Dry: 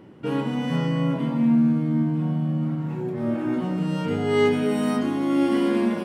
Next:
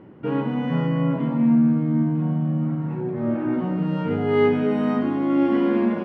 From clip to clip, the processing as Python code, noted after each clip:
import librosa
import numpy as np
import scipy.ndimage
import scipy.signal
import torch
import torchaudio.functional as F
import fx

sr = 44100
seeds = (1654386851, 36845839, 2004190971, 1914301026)

y = scipy.signal.sosfilt(scipy.signal.butter(2, 2100.0, 'lowpass', fs=sr, output='sos'), x)
y = F.gain(torch.from_numpy(y), 1.5).numpy()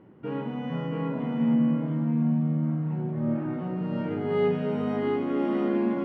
y = fx.doubler(x, sr, ms=34.0, db=-11.0)
y = y + 10.0 ** (-3.5 / 20.0) * np.pad(y, (int(680 * sr / 1000.0), 0))[:len(y)]
y = F.gain(torch.from_numpy(y), -7.5).numpy()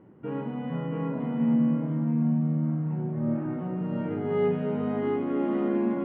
y = fx.air_absorb(x, sr, metres=330.0)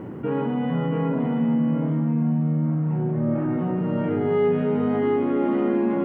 y = fx.doubler(x, sr, ms=41.0, db=-10.5)
y = fx.env_flatten(y, sr, amount_pct=50)
y = F.gain(torch.from_numpy(y), 2.0).numpy()